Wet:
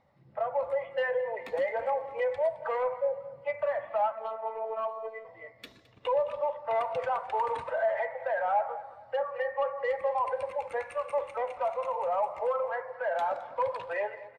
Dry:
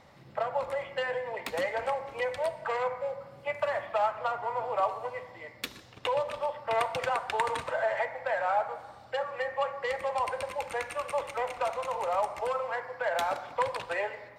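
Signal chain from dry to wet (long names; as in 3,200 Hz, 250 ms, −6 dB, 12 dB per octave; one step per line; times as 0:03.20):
in parallel at +1 dB: brickwall limiter −24.5 dBFS, peak gain reduction 11.5 dB
on the sum: soft clipping −19.5 dBFS, distortion −17 dB
0:04.12–0:05.25: phases set to zero 222 Hz
repeating echo 215 ms, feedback 58%, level −13.5 dB
every bin expanded away from the loudest bin 1.5 to 1
level −2.5 dB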